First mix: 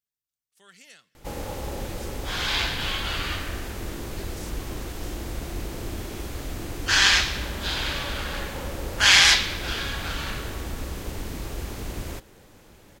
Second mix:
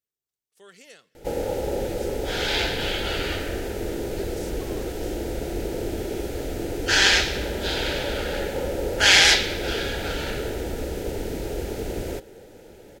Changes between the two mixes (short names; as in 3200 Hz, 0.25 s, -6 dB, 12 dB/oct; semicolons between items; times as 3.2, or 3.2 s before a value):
background: add Butterworth band-stop 1100 Hz, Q 3.7; master: add bell 450 Hz +12.5 dB 1.1 oct